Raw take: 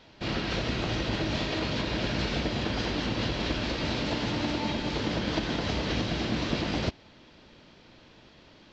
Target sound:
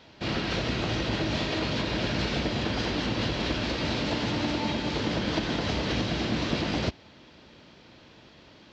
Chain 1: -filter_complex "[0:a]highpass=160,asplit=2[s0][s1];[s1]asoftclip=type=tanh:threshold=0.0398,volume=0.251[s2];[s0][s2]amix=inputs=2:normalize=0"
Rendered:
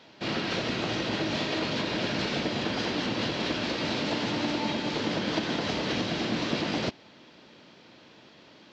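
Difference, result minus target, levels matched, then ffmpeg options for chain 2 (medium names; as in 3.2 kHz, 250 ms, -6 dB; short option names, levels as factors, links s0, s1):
125 Hz band -4.5 dB
-filter_complex "[0:a]highpass=50,asplit=2[s0][s1];[s1]asoftclip=type=tanh:threshold=0.0398,volume=0.251[s2];[s0][s2]amix=inputs=2:normalize=0"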